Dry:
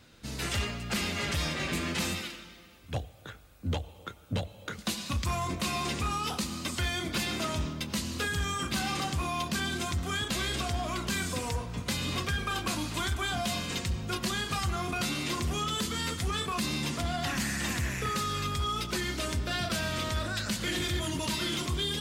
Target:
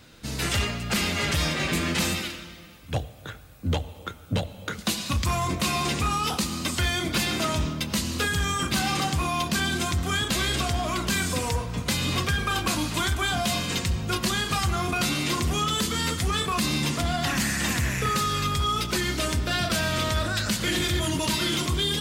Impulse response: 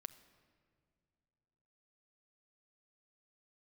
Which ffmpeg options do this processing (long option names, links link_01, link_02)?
-filter_complex "[0:a]asplit=2[link_01][link_02];[1:a]atrim=start_sample=2205,highshelf=frequency=11000:gain=6[link_03];[link_02][link_03]afir=irnorm=-1:irlink=0,volume=5dB[link_04];[link_01][link_04]amix=inputs=2:normalize=0"